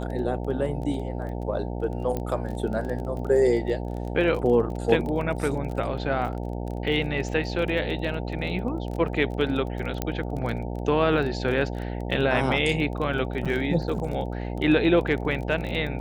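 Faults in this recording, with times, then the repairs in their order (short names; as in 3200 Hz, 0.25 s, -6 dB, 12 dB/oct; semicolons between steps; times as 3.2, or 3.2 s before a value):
buzz 60 Hz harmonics 15 -31 dBFS
crackle 23/s -32 dBFS
2.17 pop -16 dBFS
10.02 pop -11 dBFS
13.45–13.46 gap 6.5 ms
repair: de-click; de-hum 60 Hz, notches 15; interpolate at 13.45, 6.5 ms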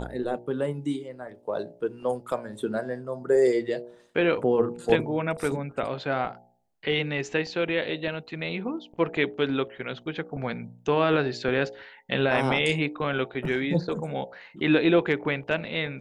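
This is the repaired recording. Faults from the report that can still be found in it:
none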